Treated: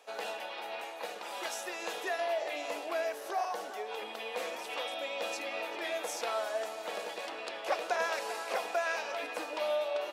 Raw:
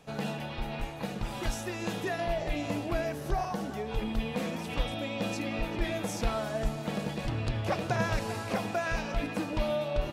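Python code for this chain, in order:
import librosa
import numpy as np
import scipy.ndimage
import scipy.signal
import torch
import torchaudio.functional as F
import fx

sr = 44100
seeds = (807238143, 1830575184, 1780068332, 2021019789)

y = scipy.signal.sosfilt(scipy.signal.butter(4, 450.0, 'highpass', fs=sr, output='sos'), x)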